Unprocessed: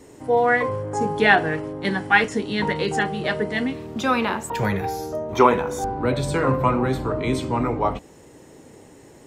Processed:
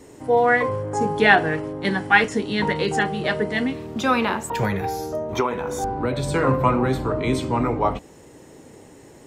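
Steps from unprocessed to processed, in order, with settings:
0:04.64–0:06.35: downward compressor 6 to 1, threshold −20 dBFS, peak gain reduction 10.5 dB
level +1 dB

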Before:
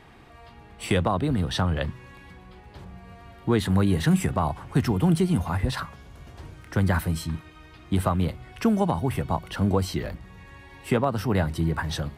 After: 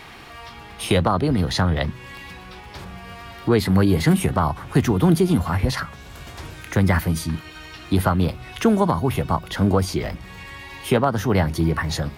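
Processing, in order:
formants moved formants +2 semitones
one half of a high-frequency compander encoder only
level +4.5 dB

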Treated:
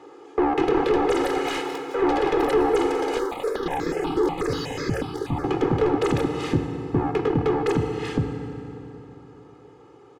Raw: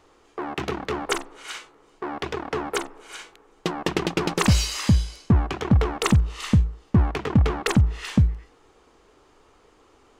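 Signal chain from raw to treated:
speech leveller within 5 dB 0.5 s
high-pass filter 180 Hz 24 dB per octave
bass and treble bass −3 dB, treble 0 dB
feedback delay network reverb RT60 3.5 s, high-frequency decay 0.65×, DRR 7.5 dB
delay with pitch and tempo change per echo 427 ms, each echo +5 semitones, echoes 3, each echo −6 dB
comb filter 2.4 ms, depth 83%
brickwall limiter −14 dBFS, peak gain reduction 11 dB
soft clipping −18 dBFS, distortion −18 dB
spectral tilt −3.5 dB per octave
0:03.19–0:05.44: step-sequenced phaser 8.2 Hz 670–2,900 Hz
level +2 dB

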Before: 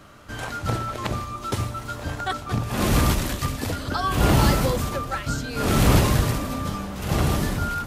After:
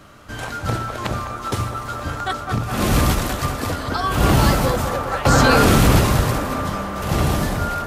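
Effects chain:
delay with a band-pass on its return 205 ms, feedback 83%, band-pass 920 Hz, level −7 dB
0:05.25–0:05.88: envelope flattener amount 100%
level +2.5 dB

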